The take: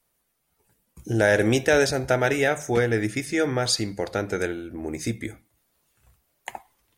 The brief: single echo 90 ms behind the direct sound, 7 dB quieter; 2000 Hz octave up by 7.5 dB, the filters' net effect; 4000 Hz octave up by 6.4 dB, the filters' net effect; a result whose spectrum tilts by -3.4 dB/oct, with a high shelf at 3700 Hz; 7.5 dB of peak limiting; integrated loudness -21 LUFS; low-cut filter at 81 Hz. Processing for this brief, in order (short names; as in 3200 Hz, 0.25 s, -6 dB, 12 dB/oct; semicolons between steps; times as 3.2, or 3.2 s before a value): HPF 81 Hz; bell 2000 Hz +8 dB; high shelf 3700 Hz +4.5 dB; bell 4000 Hz +3 dB; limiter -9 dBFS; echo 90 ms -7 dB; gain +1 dB